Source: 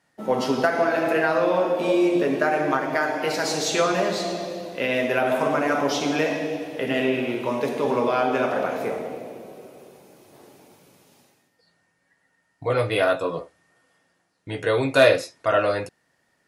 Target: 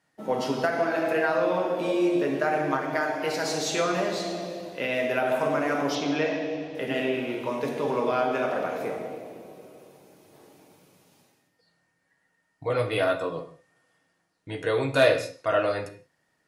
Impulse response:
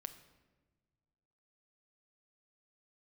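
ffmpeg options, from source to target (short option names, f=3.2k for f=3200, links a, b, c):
-filter_complex "[0:a]asettb=1/sr,asplit=3[a][b][c];[a]atrim=end=5.954[d];[b]atrim=start=5.95:end=6.75,asetpts=PTS-STARTPTS,afade=t=in:d=0.004:c=qsin,afade=t=out:st=0.796:d=0.004:c=qsin,lowpass=f=5.8k:w=0.5412,lowpass=f=5.8k:w=1.3066[e];[c]atrim=start=6.746[f];[d][e]acrossfade=d=0.004:c1=hsin:c2=qsin[g];[g][f]acrossfade=d=0.004:c1=qsin:c2=hsin[h];[1:a]atrim=start_sample=2205,afade=t=out:st=0.24:d=0.01,atrim=end_sample=11025[i];[h][i]afir=irnorm=-1:irlink=0"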